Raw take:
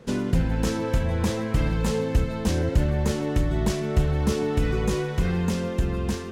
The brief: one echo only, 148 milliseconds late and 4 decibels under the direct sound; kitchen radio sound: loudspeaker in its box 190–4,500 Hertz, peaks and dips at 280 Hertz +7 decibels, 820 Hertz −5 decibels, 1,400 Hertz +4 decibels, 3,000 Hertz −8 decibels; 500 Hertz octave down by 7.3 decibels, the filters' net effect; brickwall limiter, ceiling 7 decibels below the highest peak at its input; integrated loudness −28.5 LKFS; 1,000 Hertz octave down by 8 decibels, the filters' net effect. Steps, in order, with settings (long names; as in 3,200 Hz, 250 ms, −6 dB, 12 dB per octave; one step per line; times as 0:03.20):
parametric band 500 Hz −8.5 dB
parametric band 1,000 Hz −7.5 dB
brickwall limiter −17 dBFS
loudspeaker in its box 190–4,500 Hz, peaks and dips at 280 Hz +7 dB, 820 Hz −5 dB, 1,400 Hz +4 dB, 3,000 Hz −8 dB
single-tap delay 148 ms −4 dB
level +1.5 dB